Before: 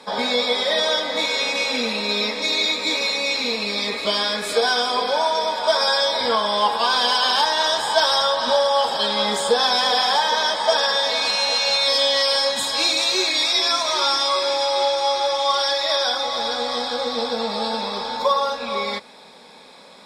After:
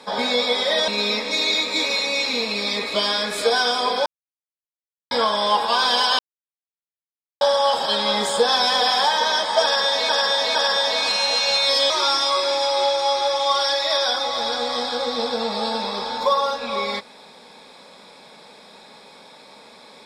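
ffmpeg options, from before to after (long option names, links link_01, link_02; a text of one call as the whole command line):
ffmpeg -i in.wav -filter_complex "[0:a]asplit=9[link_01][link_02][link_03][link_04][link_05][link_06][link_07][link_08][link_09];[link_01]atrim=end=0.882[link_10];[link_02]atrim=start=1.988:end=5.17,asetpts=PTS-STARTPTS,afade=type=out:start_time=3.178:duration=0.004:curve=hsin[link_11];[link_03]atrim=start=5.17:end=6.22,asetpts=PTS-STARTPTS,volume=0[link_12];[link_04]atrim=start=6.22:end=7.3,asetpts=PTS-STARTPTS,afade=type=in:duration=0.004:curve=hsin,afade=type=out:start_time=1.076:duration=0.004:curve=hsin[link_13];[link_05]atrim=start=7.3:end=8.52,asetpts=PTS-STARTPTS,volume=0[link_14];[link_06]atrim=start=8.52:end=11.202,asetpts=PTS-STARTPTS,afade=type=in:duration=0.004:curve=hsin[link_15];[link_07]atrim=start=10.738:end=11.202[link_16];[link_08]atrim=start=10.738:end=12.092[link_17];[link_09]atrim=start=13.888[link_18];[link_11][link_12][link_13][link_14][link_15]concat=n=5:v=0:a=1[link_19];[link_10][link_19]acrossfade=duration=0.004:curve1=hsin:curve2=hsin[link_20];[link_20][link_16]acrossfade=duration=0.004:curve1=hsin:curve2=hsin[link_21];[link_21][link_17]acrossfade=duration=0.004:curve1=hsin:curve2=hsin[link_22];[link_22][link_18]acrossfade=duration=0.004:curve1=hsin:curve2=hsin" out.wav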